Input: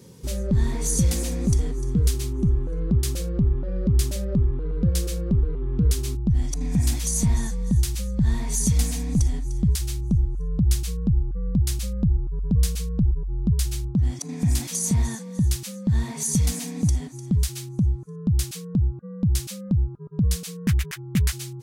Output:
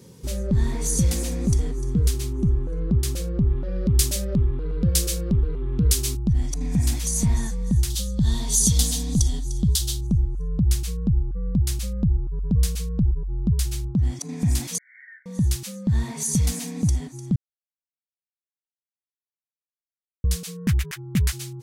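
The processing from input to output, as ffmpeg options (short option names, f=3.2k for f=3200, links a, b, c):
-filter_complex "[0:a]asettb=1/sr,asplit=3[a][b][c];[a]atrim=end=3.494[d];[b]atrim=start=3.49:end=6.33,asetpts=PTS-STARTPTS,afade=t=in:d=0.004:c=qsin,afade=t=out:st=2.836:d=0.004:c=qsin,highshelf=f=2.4k:g=10[e];[c]atrim=start=6.326[f];[d][e]acrossfade=d=0.004:c1=hsin:c2=qsin[g];[g][f]acrossfade=d=0.004:c1=qsin:c2=hsin,asettb=1/sr,asplit=3[h][i][j];[h]atrim=end=7.904[k];[i]atrim=start=7.9:end=10.07,asetpts=PTS-STARTPTS,afade=t=in:d=0.004:c=qsin,afade=t=out:st=2.166:d=0.004:c=qsin,highshelf=f=2.8k:t=q:w=3:g=6[l];[j]atrim=start=10.066[m];[k][l]acrossfade=d=0.004:c1=hsin:c2=qsin[n];[n][m]acrossfade=d=0.004:c1=qsin:c2=hsin,asettb=1/sr,asplit=3[o][p][q];[o]atrim=end=14.784[r];[p]atrim=start=14.78:end=15.26,asetpts=PTS-STARTPTS,afade=t=in:d=0.004:c=qsin,afade=t=out:st=0.476:d=0.004:c=qsin,asuperpass=centerf=1800:order=20:qfactor=2.3[s];[q]atrim=start=15.256[t];[r][s]acrossfade=d=0.004:c1=hsin:c2=qsin[u];[u][t]acrossfade=d=0.004:c1=qsin:c2=hsin,asplit=3[v][w][x];[v]atrim=end=17.36,asetpts=PTS-STARTPTS,afade=t=out:st=17.356:d=0.004:c=hsin[y];[w]atrim=start=17.36:end=20.24,asetpts=PTS-STARTPTS,volume=0[z];[x]atrim=start=20.24,asetpts=PTS-STARTPTS,afade=t=in:d=0.004:c=hsin[aa];[y][z][aa]concat=n=3:v=0:a=1"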